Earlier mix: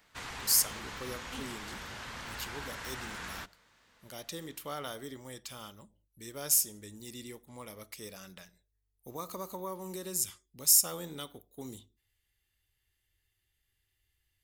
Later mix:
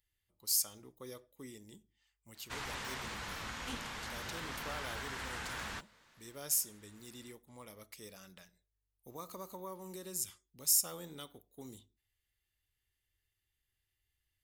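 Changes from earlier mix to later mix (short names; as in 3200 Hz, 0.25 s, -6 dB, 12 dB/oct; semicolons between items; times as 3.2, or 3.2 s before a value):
speech -6.0 dB; background: entry +2.35 s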